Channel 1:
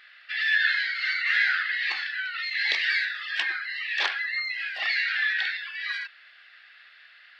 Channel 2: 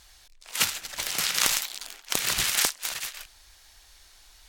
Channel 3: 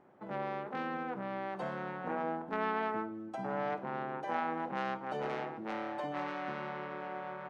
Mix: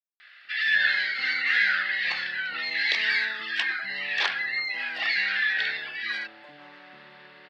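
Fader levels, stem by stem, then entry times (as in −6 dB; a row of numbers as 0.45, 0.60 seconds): +0.5 dB, muted, −12.5 dB; 0.20 s, muted, 0.45 s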